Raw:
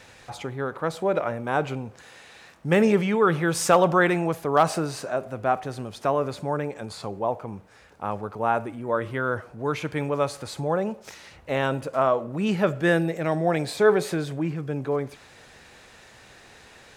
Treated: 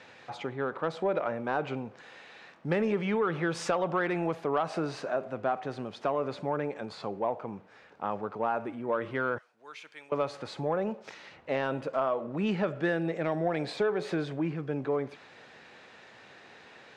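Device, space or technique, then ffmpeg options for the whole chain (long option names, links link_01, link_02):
AM radio: -filter_complex "[0:a]asettb=1/sr,asplit=3[link_01][link_02][link_03];[link_01]atrim=end=9.384[link_04];[link_02]atrim=start=9.38:end=10.12,asetpts=PTS-STARTPTS,afade=type=in:duration=0.004:curve=qsin,afade=type=out:start_time=0.736:duration=0.004:curve=qsin,aderivative[link_05];[link_03]atrim=start=10.116[link_06];[link_04][link_05]acrossfade=duration=0.004:curve1=hsin:curve2=qsin[link_07];[link_07][link_06]acrossfade=duration=0.004:curve1=qsin:curve2=hsin,highpass=170,lowpass=3800,acompressor=threshold=-22dB:ratio=6,asoftclip=type=tanh:threshold=-14.5dB,volume=-1.5dB"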